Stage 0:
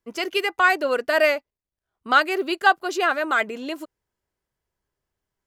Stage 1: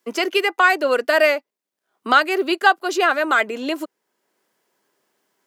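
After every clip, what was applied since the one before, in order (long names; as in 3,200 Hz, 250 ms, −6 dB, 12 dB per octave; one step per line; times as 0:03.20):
high-pass filter 220 Hz 24 dB per octave
multiband upward and downward compressor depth 40%
level +3.5 dB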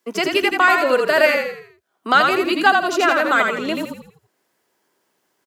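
echo with shifted repeats 83 ms, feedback 41%, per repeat −40 Hz, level −4 dB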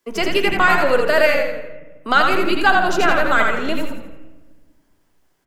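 on a send at −6 dB: linear-prediction vocoder at 8 kHz pitch kept + convolution reverb RT60 1.3 s, pre-delay 7 ms
on the sum: level −1 dB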